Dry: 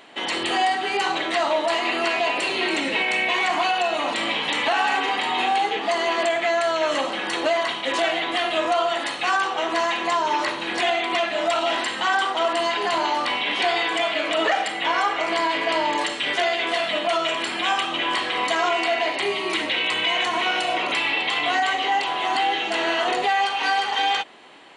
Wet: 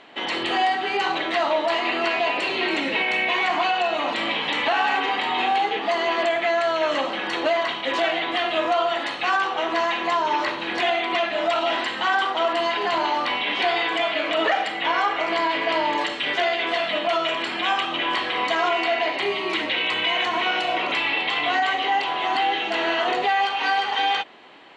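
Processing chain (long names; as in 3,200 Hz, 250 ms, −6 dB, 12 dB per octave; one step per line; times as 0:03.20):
low-pass filter 4,500 Hz 12 dB per octave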